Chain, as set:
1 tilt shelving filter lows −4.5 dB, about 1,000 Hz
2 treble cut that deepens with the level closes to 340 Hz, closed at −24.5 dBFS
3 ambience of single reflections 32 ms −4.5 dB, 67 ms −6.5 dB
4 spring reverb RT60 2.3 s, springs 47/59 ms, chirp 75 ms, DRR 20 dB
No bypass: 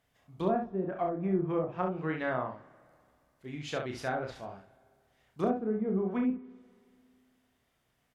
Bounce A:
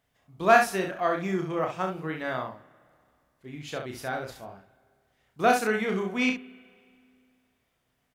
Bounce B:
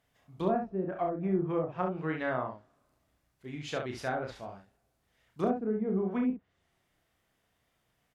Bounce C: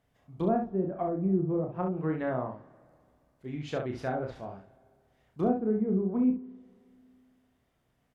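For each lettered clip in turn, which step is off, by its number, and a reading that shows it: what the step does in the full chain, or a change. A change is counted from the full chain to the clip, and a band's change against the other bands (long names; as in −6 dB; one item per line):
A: 2, 125 Hz band −9.5 dB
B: 4, change in momentary loudness spread −1 LU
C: 1, 4 kHz band −6.5 dB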